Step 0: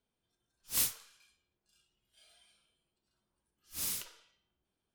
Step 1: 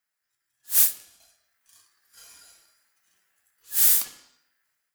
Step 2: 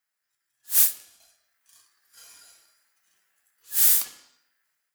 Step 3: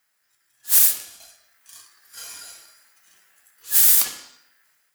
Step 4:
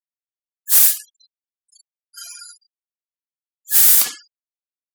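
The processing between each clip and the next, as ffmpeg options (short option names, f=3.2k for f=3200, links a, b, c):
-af "aeval=exprs='val(0)*sin(2*PI*1700*n/s)':c=same,aemphasis=mode=production:type=50kf,dynaudnorm=f=220:g=5:m=12dB"
-af "lowshelf=f=230:g=-5.5"
-af "alimiter=level_in=13dB:limit=-1dB:release=50:level=0:latency=1,volume=-1dB"
-filter_complex "[0:a]afftfilt=real='re*gte(hypot(re,im),0.0178)':imag='im*gte(hypot(re,im),0.0178)':win_size=1024:overlap=0.75,asplit=2[a][b];[b]acontrast=79,volume=3dB[c];[a][c]amix=inputs=2:normalize=0,volume=-7.5dB"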